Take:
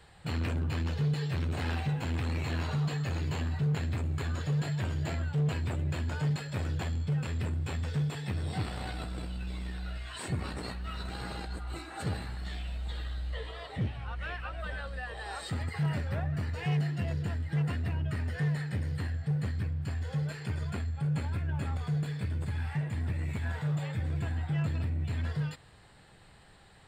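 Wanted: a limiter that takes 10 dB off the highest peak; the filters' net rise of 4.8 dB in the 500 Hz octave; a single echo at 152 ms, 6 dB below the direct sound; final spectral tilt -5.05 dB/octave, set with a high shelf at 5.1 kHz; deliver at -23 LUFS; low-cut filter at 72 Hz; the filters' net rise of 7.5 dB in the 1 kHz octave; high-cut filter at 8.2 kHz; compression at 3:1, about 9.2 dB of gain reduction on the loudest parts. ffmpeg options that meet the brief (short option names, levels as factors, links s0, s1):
-af "highpass=72,lowpass=8200,equalizer=f=500:t=o:g=3.5,equalizer=f=1000:t=o:g=8.5,highshelf=f=5100:g=4.5,acompressor=threshold=0.0126:ratio=3,alimiter=level_in=3.55:limit=0.0631:level=0:latency=1,volume=0.282,aecho=1:1:152:0.501,volume=10"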